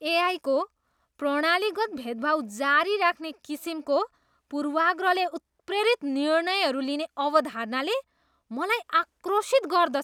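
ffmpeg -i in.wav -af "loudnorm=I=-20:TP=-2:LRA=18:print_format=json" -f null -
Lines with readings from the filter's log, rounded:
"input_i" : "-25.9",
"input_tp" : "-7.7",
"input_lra" : "0.7",
"input_thresh" : "-36.3",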